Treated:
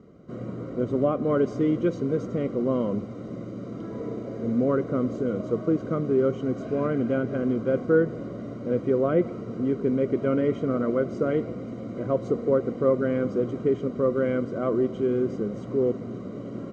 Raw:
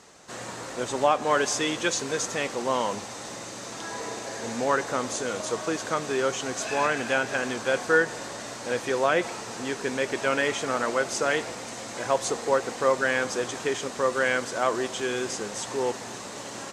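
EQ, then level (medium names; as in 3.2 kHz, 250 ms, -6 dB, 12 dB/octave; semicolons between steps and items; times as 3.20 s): boxcar filter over 51 samples; distance through air 69 m; peaking EQ 180 Hz +6 dB 2.1 oct; +6.0 dB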